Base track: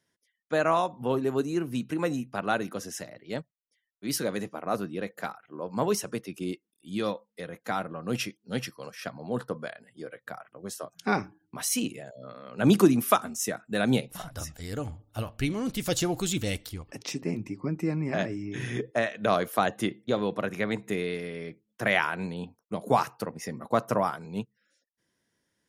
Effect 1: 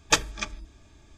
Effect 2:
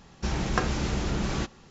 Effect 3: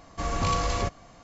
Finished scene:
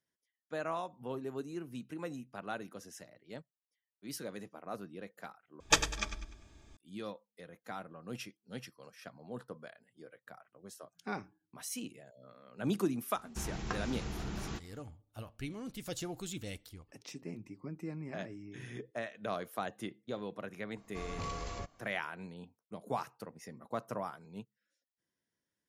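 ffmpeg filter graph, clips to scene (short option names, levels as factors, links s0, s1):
-filter_complex "[0:a]volume=0.224[s0];[1:a]aecho=1:1:99|198|297|396:0.299|0.116|0.0454|0.0177[s1];[2:a]bandreject=f=560:w=6.5[s2];[s0]asplit=2[s3][s4];[s3]atrim=end=5.604[s5];[s1]atrim=end=1.17,asetpts=PTS-STARTPTS,volume=0.562[s6];[s4]atrim=start=6.766[s7];[s2]atrim=end=1.7,asetpts=PTS-STARTPTS,volume=0.266,afade=t=in:d=0.004:c=hsin,afade=t=out:st=1.696:d=0.004:c=hsin,adelay=13130[s8];[3:a]atrim=end=1.23,asetpts=PTS-STARTPTS,volume=0.188,afade=t=in:d=0.004:c=hsin,afade=t=out:st=1.226:d=0.004:c=hsin,adelay=20770[s9];[s5][s6]acrossfade=d=0.004:c1=hsin:c2=hsin[s10];[s10][s7]acrossfade=d=0.004:c1=hsin:c2=hsin[s11];[s11][s8][s9]amix=inputs=3:normalize=0"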